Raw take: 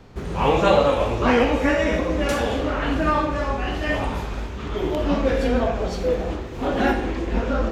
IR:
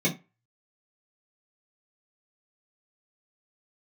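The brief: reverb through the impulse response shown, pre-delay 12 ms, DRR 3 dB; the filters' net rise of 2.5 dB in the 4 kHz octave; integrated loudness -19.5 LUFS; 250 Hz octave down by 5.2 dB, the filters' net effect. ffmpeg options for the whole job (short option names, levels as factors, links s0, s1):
-filter_complex "[0:a]equalizer=f=250:t=o:g=-6.5,equalizer=f=4000:t=o:g=3.5,asplit=2[s0][s1];[1:a]atrim=start_sample=2205,adelay=12[s2];[s1][s2]afir=irnorm=-1:irlink=0,volume=0.188[s3];[s0][s3]amix=inputs=2:normalize=0,volume=1.12"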